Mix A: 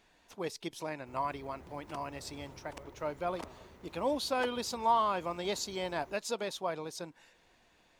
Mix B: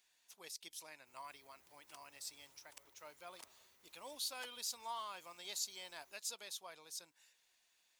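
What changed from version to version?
master: add pre-emphasis filter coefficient 0.97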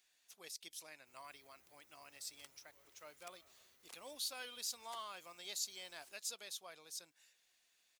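second sound: entry +0.50 s; master: add peaking EQ 940 Hz -7 dB 0.27 oct

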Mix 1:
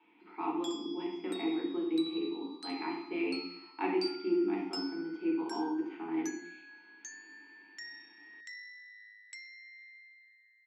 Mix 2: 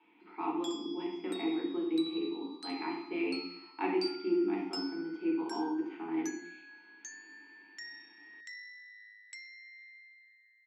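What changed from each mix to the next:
no change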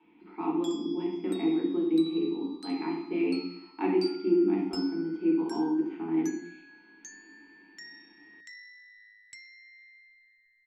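master: remove frequency weighting A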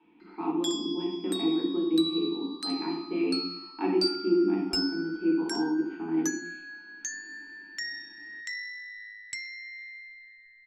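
speech: add band-stop 2.1 kHz, Q 9.2; background +11.5 dB

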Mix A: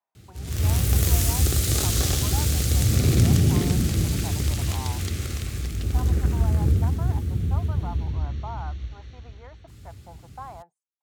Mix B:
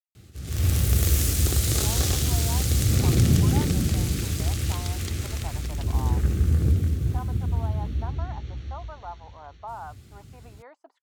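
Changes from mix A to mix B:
speech: entry +1.20 s; reverb: off

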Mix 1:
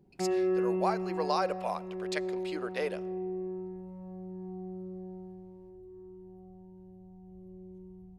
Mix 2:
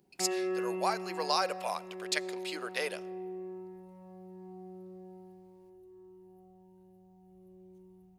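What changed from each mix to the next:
master: add tilt EQ +3.5 dB/octave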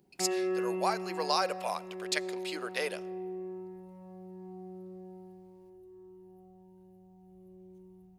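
master: add bass shelf 440 Hz +3 dB

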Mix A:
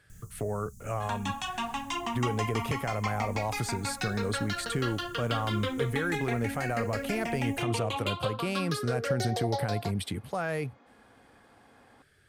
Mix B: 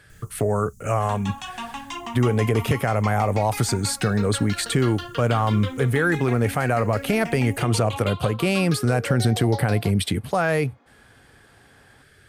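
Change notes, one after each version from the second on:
speech +10.5 dB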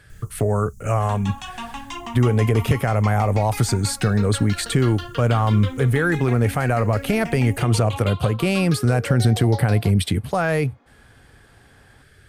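master: add bass shelf 90 Hz +10.5 dB

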